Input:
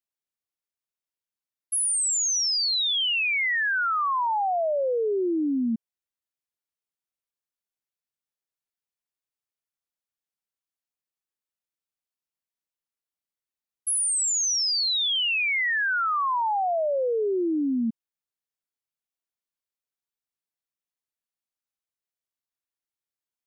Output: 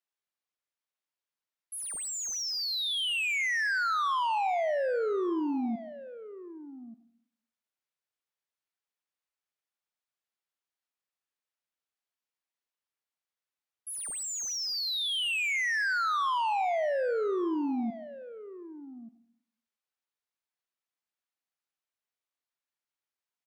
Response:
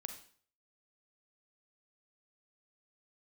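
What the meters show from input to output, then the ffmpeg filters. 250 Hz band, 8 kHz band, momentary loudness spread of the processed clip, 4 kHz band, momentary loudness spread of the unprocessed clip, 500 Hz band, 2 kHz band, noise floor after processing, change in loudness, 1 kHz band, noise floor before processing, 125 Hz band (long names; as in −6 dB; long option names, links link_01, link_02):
−5.5 dB, −11.0 dB, 18 LU, −7.0 dB, 5 LU, −4.0 dB, −4.5 dB, below −85 dBFS, −6.0 dB, −3.5 dB, below −85 dBFS, can't be measured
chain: -filter_complex "[0:a]asplit=2[link_01][link_02];[link_02]highpass=frequency=720:poles=1,volume=12dB,asoftclip=type=tanh:threshold=-21.5dB[link_03];[link_01][link_03]amix=inputs=2:normalize=0,lowpass=frequency=2900:poles=1,volume=-6dB,aecho=1:1:1185:0.178,asplit=2[link_04][link_05];[1:a]atrim=start_sample=2205,asetrate=29547,aresample=44100[link_06];[link_05][link_06]afir=irnorm=-1:irlink=0,volume=-4dB[link_07];[link_04][link_07]amix=inputs=2:normalize=0,volume=-7.5dB"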